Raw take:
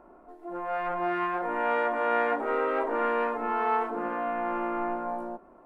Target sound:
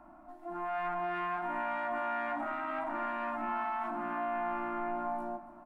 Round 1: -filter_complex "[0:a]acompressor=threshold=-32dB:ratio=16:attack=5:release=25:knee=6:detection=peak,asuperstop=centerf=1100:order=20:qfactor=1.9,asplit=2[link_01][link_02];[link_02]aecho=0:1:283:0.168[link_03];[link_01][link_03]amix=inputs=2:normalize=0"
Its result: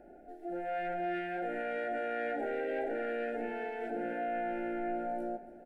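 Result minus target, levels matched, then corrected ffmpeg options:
500 Hz band +4.5 dB
-filter_complex "[0:a]acompressor=threshold=-32dB:ratio=16:attack=5:release=25:knee=6:detection=peak,asuperstop=centerf=450:order=20:qfactor=1.9,asplit=2[link_01][link_02];[link_02]aecho=0:1:283:0.168[link_03];[link_01][link_03]amix=inputs=2:normalize=0"

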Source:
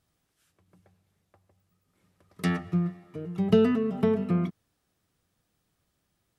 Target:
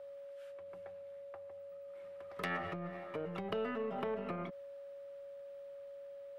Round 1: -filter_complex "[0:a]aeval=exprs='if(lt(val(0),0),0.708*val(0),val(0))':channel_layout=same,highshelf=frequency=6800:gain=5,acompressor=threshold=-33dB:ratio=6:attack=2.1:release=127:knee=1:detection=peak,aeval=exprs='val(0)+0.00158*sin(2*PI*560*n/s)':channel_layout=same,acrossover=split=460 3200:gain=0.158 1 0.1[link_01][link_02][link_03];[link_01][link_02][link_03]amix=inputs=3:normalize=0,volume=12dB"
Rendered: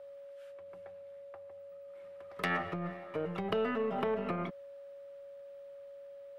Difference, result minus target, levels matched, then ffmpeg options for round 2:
downward compressor: peak gain reduction −5.5 dB
-filter_complex "[0:a]aeval=exprs='if(lt(val(0),0),0.708*val(0),val(0))':channel_layout=same,highshelf=frequency=6800:gain=5,acompressor=threshold=-39.5dB:ratio=6:attack=2.1:release=127:knee=1:detection=peak,aeval=exprs='val(0)+0.00158*sin(2*PI*560*n/s)':channel_layout=same,acrossover=split=460 3200:gain=0.158 1 0.1[link_01][link_02][link_03];[link_01][link_02][link_03]amix=inputs=3:normalize=0,volume=12dB"

